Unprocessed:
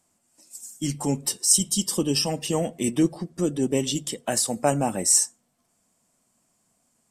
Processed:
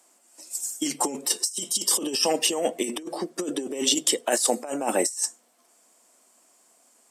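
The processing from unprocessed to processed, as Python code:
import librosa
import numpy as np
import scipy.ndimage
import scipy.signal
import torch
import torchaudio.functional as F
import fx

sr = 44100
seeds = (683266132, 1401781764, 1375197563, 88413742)

y = fx.over_compress(x, sr, threshold_db=-27.0, ratio=-0.5)
y = scipy.signal.sosfilt(scipy.signal.butter(4, 310.0, 'highpass', fs=sr, output='sos'), y)
y = F.gain(torch.from_numpy(y), 5.0).numpy()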